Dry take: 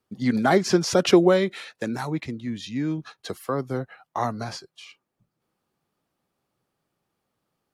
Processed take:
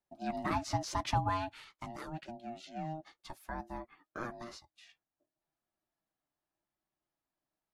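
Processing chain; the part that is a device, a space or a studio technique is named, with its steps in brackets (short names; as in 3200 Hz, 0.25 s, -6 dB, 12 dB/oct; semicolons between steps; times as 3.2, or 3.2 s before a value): alien voice (ring modulator 470 Hz; flange 0.87 Hz, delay 5.2 ms, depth 1.7 ms, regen -49%); gain -7.5 dB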